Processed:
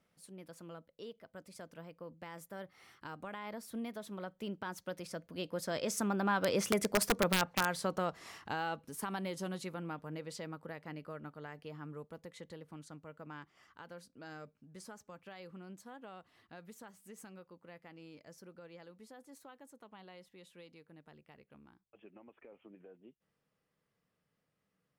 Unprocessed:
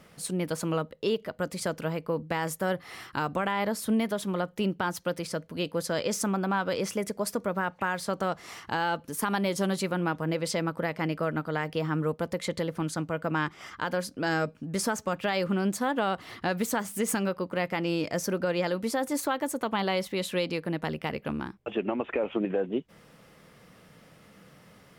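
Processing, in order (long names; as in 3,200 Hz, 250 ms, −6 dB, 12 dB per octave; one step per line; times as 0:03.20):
source passing by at 0:07.01, 13 m/s, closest 7.8 metres
wrap-around overflow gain 20.5 dB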